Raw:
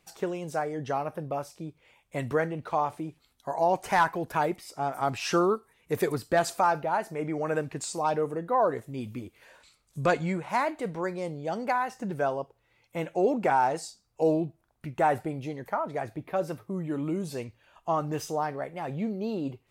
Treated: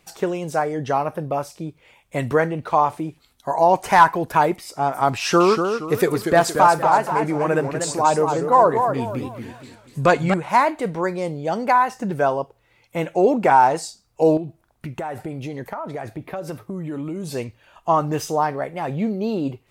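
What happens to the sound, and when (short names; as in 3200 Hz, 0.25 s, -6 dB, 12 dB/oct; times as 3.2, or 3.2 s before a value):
5.17–10.34 warbling echo 0.236 s, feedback 38%, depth 192 cents, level -6.5 dB
14.37–17.3 compressor 10:1, threshold -33 dBFS
whole clip: dynamic EQ 990 Hz, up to +5 dB, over -40 dBFS, Q 4.6; gain +8 dB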